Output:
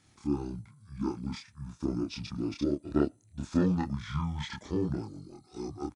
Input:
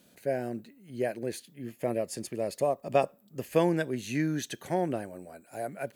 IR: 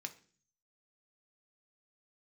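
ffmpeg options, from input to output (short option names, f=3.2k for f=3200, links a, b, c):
-filter_complex "[0:a]asetrate=23361,aresample=44100,atempo=1.88775,asplit=2[a][b];[b]adelay=28,volume=-2.5dB[c];[a][c]amix=inputs=2:normalize=0,volume=-3dB"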